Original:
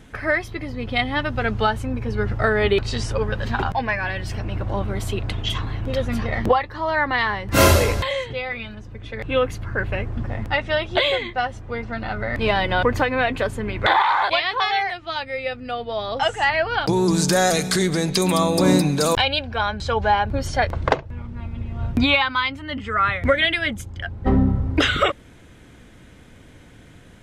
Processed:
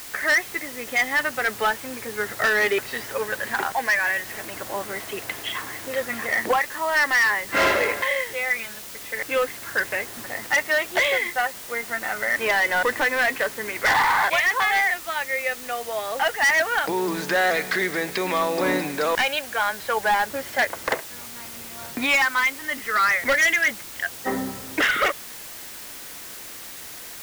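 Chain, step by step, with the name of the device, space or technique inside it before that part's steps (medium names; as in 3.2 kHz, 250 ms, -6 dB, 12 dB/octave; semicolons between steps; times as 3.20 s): drive-through speaker (band-pass 390–2800 Hz; peaking EQ 1.9 kHz +10.5 dB 0.56 oct; hard clipper -14 dBFS, distortion -11 dB; white noise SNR 14 dB); trim -1.5 dB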